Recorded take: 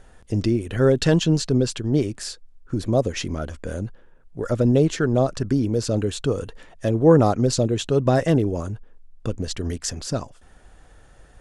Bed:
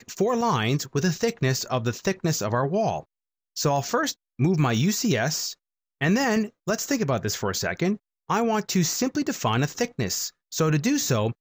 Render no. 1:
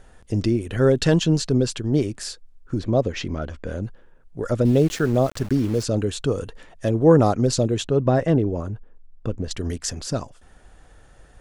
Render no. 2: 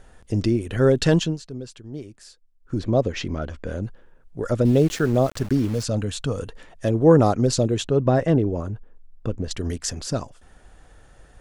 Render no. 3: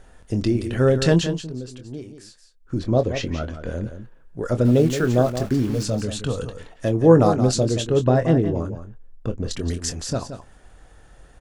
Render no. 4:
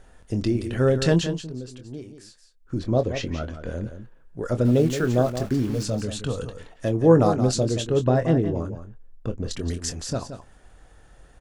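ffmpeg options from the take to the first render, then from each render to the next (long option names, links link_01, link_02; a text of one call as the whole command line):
ffmpeg -i in.wav -filter_complex "[0:a]asettb=1/sr,asplit=3[link_01][link_02][link_03];[link_01]atrim=end=2.794[link_04];[link_02]atrim=start=2.79:end=3.83,asetpts=PTS-STARTPTS,afade=type=in:duration=0.004:curve=qsin,afade=type=out:start_time=1.036:duration=0.004:curve=qsin,lowpass=4700[link_05];[link_03]atrim=start=3.826[link_06];[link_04][link_05]acrossfade=duration=0.004:curve1=hsin:curve2=qsin[link_07];[link_07][link_06]acrossfade=duration=0.004:curve1=qsin:curve2=hsin,asplit=3[link_08][link_09][link_10];[link_08]afade=type=out:start_time=4.64:duration=0.02[link_11];[link_09]aeval=exprs='val(0)*gte(abs(val(0)),0.02)':channel_layout=same,afade=type=in:start_time=4.64:duration=0.02,afade=type=out:start_time=5.82:duration=0.02[link_12];[link_10]afade=type=in:start_time=5.82:duration=0.02[link_13];[link_11][link_12][link_13]amix=inputs=3:normalize=0,asettb=1/sr,asplit=3[link_14][link_15][link_16];[link_14]atrim=end=7.844[link_17];[link_15]atrim=start=7.84:end=9.51,asetpts=PTS-STARTPTS,afade=type=in:duration=0.004:curve=qsin,afade=type=out:start_time=1.666:duration=0.004:curve=qsin,lowpass=frequency=1800:poles=1[link_18];[link_16]atrim=start=9.506[link_19];[link_17][link_18]acrossfade=duration=0.004:curve1=hsin:curve2=qsin[link_20];[link_20][link_19]acrossfade=duration=0.004:curve1=qsin:curve2=hsin" out.wav
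ffmpeg -i in.wav -filter_complex "[0:a]asettb=1/sr,asplit=3[link_01][link_02][link_03];[link_01]atrim=end=5.684[link_04];[link_02]atrim=start=5.68:end=6.39,asetpts=PTS-STARTPTS,afade=type=in:duration=0.004:curve=qsin,afade=type=out:start_time=0.706:duration=0.004:curve=qsin,equalizer=frequency=370:width_type=o:width=0.46:gain=-12.5[link_05];[link_03]atrim=start=6.386[link_06];[link_04][link_05]acrossfade=duration=0.004:curve1=hsin:curve2=qsin[link_07];[link_07][link_06]acrossfade=duration=0.004:curve1=qsin:curve2=hsin,asplit=3[link_08][link_09][link_10];[link_08]atrim=end=1.37,asetpts=PTS-STARTPTS,afade=type=out:start_time=1.19:duration=0.18:silence=0.188365[link_11];[link_09]atrim=start=1.37:end=2.59,asetpts=PTS-STARTPTS,volume=-14.5dB[link_12];[link_10]atrim=start=2.59,asetpts=PTS-STARTPTS,afade=type=in:duration=0.18:silence=0.188365[link_13];[link_11][link_12][link_13]concat=n=3:v=0:a=1" out.wav
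ffmpeg -i in.wav -filter_complex "[0:a]asplit=2[link_01][link_02];[link_02]adelay=24,volume=-10dB[link_03];[link_01][link_03]amix=inputs=2:normalize=0,asplit=2[link_04][link_05];[link_05]aecho=0:1:174:0.316[link_06];[link_04][link_06]amix=inputs=2:normalize=0" out.wav
ffmpeg -i in.wav -af "volume=-2.5dB" out.wav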